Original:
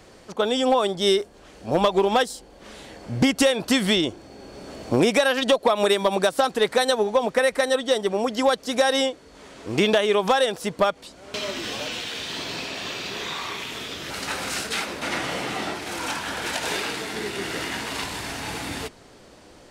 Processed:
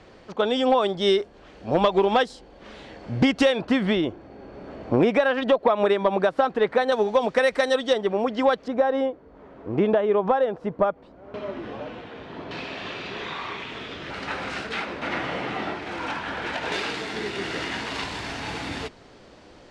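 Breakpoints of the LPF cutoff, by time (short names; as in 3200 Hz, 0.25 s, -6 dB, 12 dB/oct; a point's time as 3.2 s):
3700 Hz
from 3.61 s 2000 Hz
from 6.92 s 5100 Hz
from 7.93 s 2600 Hz
from 8.68 s 1100 Hz
from 12.51 s 2700 Hz
from 16.72 s 4900 Hz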